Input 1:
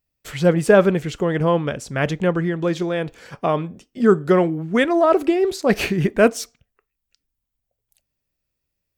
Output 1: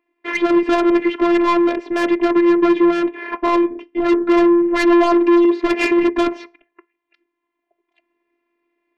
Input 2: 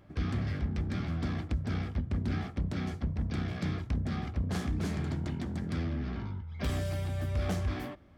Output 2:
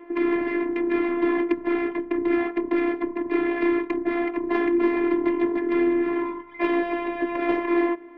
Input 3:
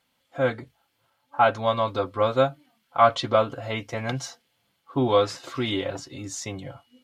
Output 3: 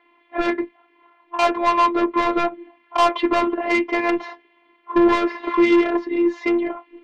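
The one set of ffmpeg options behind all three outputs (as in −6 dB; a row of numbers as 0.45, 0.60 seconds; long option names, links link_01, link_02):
-filter_complex "[0:a]asplit=2[link_01][link_02];[link_02]acompressor=threshold=-29dB:ratio=6,volume=2dB[link_03];[link_01][link_03]amix=inputs=2:normalize=0,highpass=frequency=250:width=0.5412,highpass=frequency=250:width=1.3066,equalizer=frequency=300:width_type=q:width=4:gain=5,equalizer=frequency=440:width_type=q:width=4:gain=4,equalizer=frequency=670:width_type=q:width=4:gain=-8,equalizer=frequency=960:width_type=q:width=4:gain=7,equalizer=frequency=1400:width_type=q:width=4:gain=-10,equalizer=frequency=2100:width_type=q:width=4:gain=4,lowpass=frequency=2200:width=0.5412,lowpass=frequency=2200:width=1.3066,apsyclip=12dB,asoftclip=type=tanh:threshold=-10.5dB,afftfilt=real='hypot(re,im)*cos(PI*b)':imag='0':win_size=512:overlap=0.75,volume=1.5dB"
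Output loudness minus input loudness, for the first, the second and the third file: +3.5, +10.0, +5.0 LU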